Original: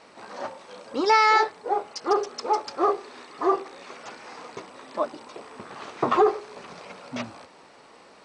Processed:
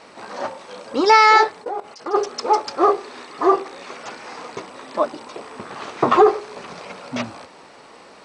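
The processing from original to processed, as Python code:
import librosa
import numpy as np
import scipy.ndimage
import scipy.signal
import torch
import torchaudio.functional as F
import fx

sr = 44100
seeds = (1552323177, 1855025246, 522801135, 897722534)

y = fx.level_steps(x, sr, step_db=16, at=(1.62, 2.13), fade=0.02)
y = y * librosa.db_to_amplitude(6.5)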